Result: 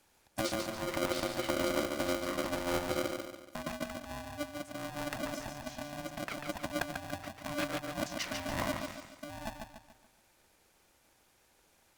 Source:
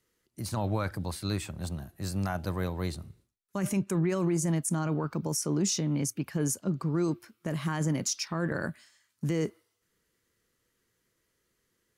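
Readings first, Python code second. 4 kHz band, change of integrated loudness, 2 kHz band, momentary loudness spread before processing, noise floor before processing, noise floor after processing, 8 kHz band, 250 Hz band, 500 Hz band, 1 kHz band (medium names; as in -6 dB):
0.0 dB, -5.5 dB, +2.0 dB, 9 LU, -78 dBFS, -69 dBFS, -10.0 dB, -8.0 dB, -1.5 dB, +0.5 dB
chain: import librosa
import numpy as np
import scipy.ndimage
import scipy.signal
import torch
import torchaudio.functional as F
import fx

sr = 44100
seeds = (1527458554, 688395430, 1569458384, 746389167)

y = fx.env_lowpass_down(x, sr, base_hz=970.0, full_db=-25.5)
y = fx.over_compress(y, sr, threshold_db=-36.0, ratio=-0.5)
y = fx.echo_feedback(y, sr, ms=143, feedback_pct=43, wet_db=-5.0)
y = y * np.sign(np.sin(2.0 * np.pi * 440.0 * np.arange(len(y)) / sr))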